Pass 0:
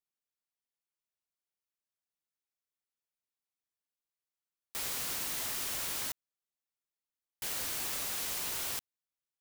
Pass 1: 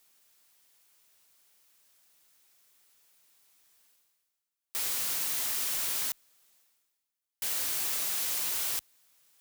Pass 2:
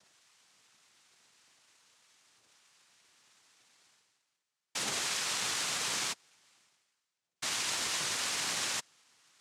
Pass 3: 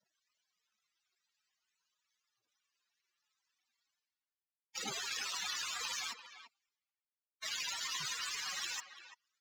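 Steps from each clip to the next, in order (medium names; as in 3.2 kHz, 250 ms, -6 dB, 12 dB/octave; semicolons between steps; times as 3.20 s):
tilt EQ +1.5 dB/octave; reverse; upward compressor, threshold -46 dBFS; reverse
phaser 0.41 Hz, delay 2.8 ms, feedback 65%; one-sided clip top -31.5 dBFS; noise-vocoded speech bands 2; trim +3 dB
loudest bins only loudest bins 32; power-law waveshaper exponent 1.4; speakerphone echo 340 ms, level -11 dB; trim +5 dB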